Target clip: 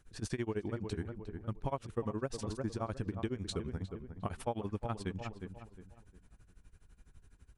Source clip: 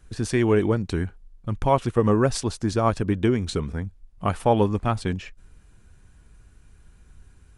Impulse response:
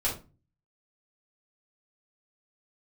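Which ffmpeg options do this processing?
-filter_complex "[0:a]tremolo=f=12:d=0.95,asplit=2[link_01][link_02];[link_02]adelay=357,lowpass=frequency=1800:poles=1,volume=-11dB,asplit=2[link_03][link_04];[link_04]adelay=357,lowpass=frequency=1800:poles=1,volume=0.33,asplit=2[link_05][link_06];[link_06]adelay=357,lowpass=frequency=1800:poles=1,volume=0.33,asplit=2[link_07][link_08];[link_08]adelay=357,lowpass=frequency=1800:poles=1,volume=0.33[link_09];[link_01][link_03][link_05][link_07][link_09]amix=inputs=5:normalize=0,acompressor=threshold=-28dB:ratio=5,volume=-5dB"

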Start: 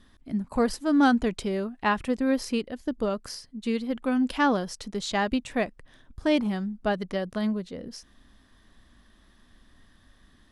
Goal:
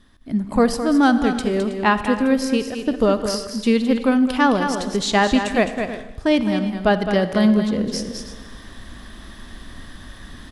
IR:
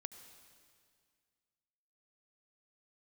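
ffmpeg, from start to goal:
-filter_complex "[0:a]aecho=1:1:212|321:0.376|0.133,asplit=2[link_01][link_02];[1:a]atrim=start_sample=2205,asetrate=66150,aresample=44100[link_03];[link_02][link_03]afir=irnorm=-1:irlink=0,volume=11.5dB[link_04];[link_01][link_04]amix=inputs=2:normalize=0,dynaudnorm=framelen=120:gausssize=5:maxgain=16dB,volume=-5dB"

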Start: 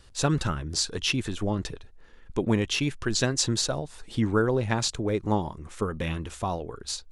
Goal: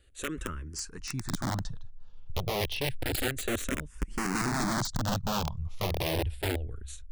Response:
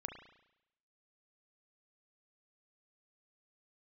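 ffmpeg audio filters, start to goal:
-filter_complex "[0:a]asubboost=boost=11:cutoff=120,aeval=exprs='(mod(5.62*val(0)+1,2)-1)/5.62':channel_layout=same,asplit=2[link_01][link_02];[link_02]afreqshift=-0.3[link_03];[link_01][link_03]amix=inputs=2:normalize=1,volume=-7dB"

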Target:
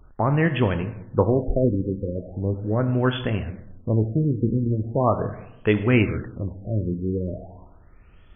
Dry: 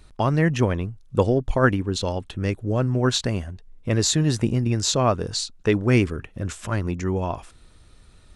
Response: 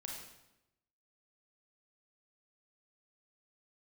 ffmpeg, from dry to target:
-filter_complex "[0:a]aemphasis=mode=production:type=50fm,asplit=2[link_01][link_02];[1:a]atrim=start_sample=2205,adelay=28[link_03];[link_02][link_03]afir=irnorm=-1:irlink=0,volume=-6.5dB[link_04];[link_01][link_04]amix=inputs=2:normalize=0,afftfilt=real='re*lt(b*sr/1024,520*pow(3500/520,0.5+0.5*sin(2*PI*0.39*pts/sr)))':imag='im*lt(b*sr/1024,520*pow(3500/520,0.5+0.5*sin(2*PI*0.39*pts/sr)))':win_size=1024:overlap=0.75"

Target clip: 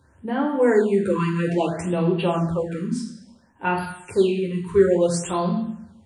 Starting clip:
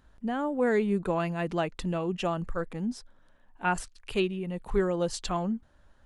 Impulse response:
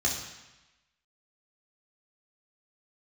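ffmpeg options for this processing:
-filter_complex "[1:a]atrim=start_sample=2205,asetrate=57330,aresample=44100[link_01];[0:a][link_01]afir=irnorm=-1:irlink=0,afftfilt=real='re*(1-between(b*sr/1024,640*pow(7100/640,0.5+0.5*sin(2*PI*0.59*pts/sr))/1.41,640*pow(7100/640,0.5+0.5*sin(2*PI*0.59*pts/sr))*1.41))':imag='im*(1-between(b*sr/1024,640*pow(7100/640,0.5+0.5*sin(2*PI*0.59*pts/sr))/1.41,640*pow(7100/640,0.5+0.5*sin(2*PI*0.59*pts/sr))*1.41))':win_size=1024:overlap=0.75"

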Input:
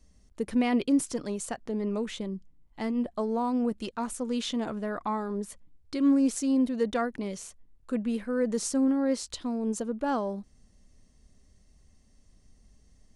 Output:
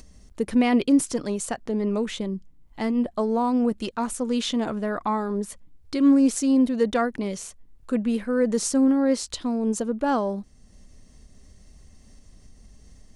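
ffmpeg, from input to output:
ffmpeg -i in.wav -af "acompressor=mode=upward:threshold=-47dB:ratio=2.5,volume=5.5dB" out.wav

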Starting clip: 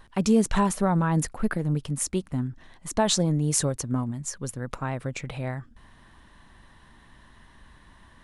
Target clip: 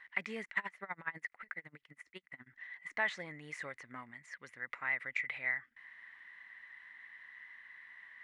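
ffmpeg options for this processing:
ffmpeg -i in.wav -filter_complex "[0:a]deesser=0.85,bandpass=frequency=2000:width_type=q:width=14:csg=0,asplit=3[link_01][link_02][link_03];[link_01]afade=type=out:start_time=0.44:duration=0.02[link_04];[link_02]aeval=exprs='val(0)*pow(10,-26*(0.5-0.5*cos(2*PI*12*n/s))/20)':channel_layout=same,afade=type=in:start_time=0.44:duration=0.02,afade=type=out:start_time=2.46:duration=0.02[link_05];[link_03]afade=type=in:start_time=2.46:duration=0.02[link_06];[link_04][link_05][link_06]amix=inputs=3:normalize=0,volume=15dB" out.wav

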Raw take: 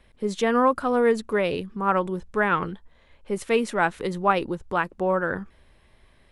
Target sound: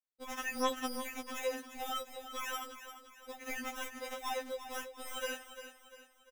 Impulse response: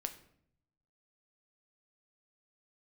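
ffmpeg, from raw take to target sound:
-filter_complex "[0:a]aeval=exprs='if(lt(val(0),0),0.251*val(0),val(0))':channel_layout=same,aemphasis=mode=production:type=riaa,asettb=1/sr,asplit=3[link_01][link_02][link_03];[link_01]atrim=end=1.354[link_04];[link_02]atrim=start=1.35:end=3.43,asetpts=PTS-STARTPTS,afade=type=in:duration=0.004:curve=qsin,afade=type=out:start_time=2.076:duration=0.004:curve=qsin,acrossover=split=3700[link_05][link_06];[link_06]acompressor=threshold=-49dB:ratio=4:attack=1:release=60[link_07];[link_05][link_07]amix=inputs=2:normalize=0[link_08];[link_03]atrim=start=3.426[link_09];[link_04][link_08]acrossfade=duration=0.004:curve1=hsin:curve2=qsin[link_10];[link_10][link_09]acrossfade=duration=0.004:curve1=qsin:curve2=hsin,afftdn=noise_reduction=16:noise_floor=-45,agate=range=-33dB:threshold=-51dB:ratio=16:detection=peak,acompressor=threshold=-35dB:ratio=4,acrusher=samples=10:mix=1:aa=0.000001,asoftclip=type=tanh:threshold=-37.5dB,aecho=1:1:347|694|1041|1388|1735:0.282|0.124|0.0546|0.024|0.0106,afftfilt=real='re*3.46*eq(mod(b,12),0)':imag='im*3.46*eq(mod(b,12),0)':win_size=2048:overlap=0.75,volume=6.5dB"

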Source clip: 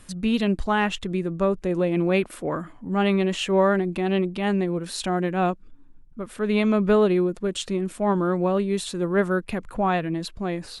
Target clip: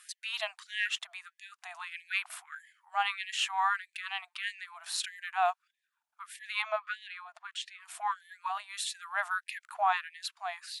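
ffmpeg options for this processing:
ffmpeg -i in.wav -filter_complex "[0:a]asettb=1/sr,asplit=3[link_01][link_02][link_03];[link_01]atrim=end=6.624[link_04];[link_02]atrim=start=6.62:end=7.81,asetpts=PTS-STARTPTS,afade=type=in:duration=0.004:curve=qsin,afade=type=out:start_time=1.186:duration=0.004:curve=qsin,aemphasis=mode=reproduction:type=75fm[link_05];[link_03]atrim=start=7.806[link_06];[link_04][link_05]acrossfade=duration=0.004:curve1=hsin:curve2=qsin[link_07];[link_07][link_06]acrossfade=duration=0.004:curve1=qsin:curve2=hsin,afftfilt=real='re*gte(b*sr/1024,610*pow(1700/610,0.5+0.5*sin(2*PI*1.6*pts/sr)))':imag='im*gte(b*sr/1024,610*pow(1700/610,0.5+0.5*sin(2*PI*1.6*pts/sr)))':win_size=1024:overlap=0.75,volume=-2dB" out.wav

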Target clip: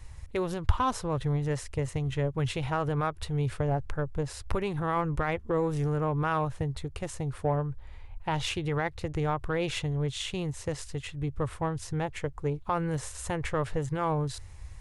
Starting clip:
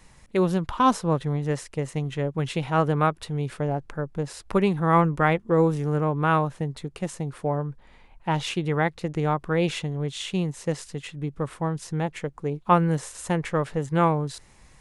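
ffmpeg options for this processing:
ffmpeg -i in.wav -af "alimiter=limit=-17.5dB:level=0:latency=1:release=96,lowshelf=frequency=130:width_type=q:width=3:gain=11.5,aeval=exprs='0.316*(cos(1*acos(clip(val(0)/0.316,-1,1)))-cos(1*PI/2))+0.00891*(cos(7*acos(clip(val(0)/0.316,-1,1)))-cos(7*PI/2))':channel_layout=same" out.wav

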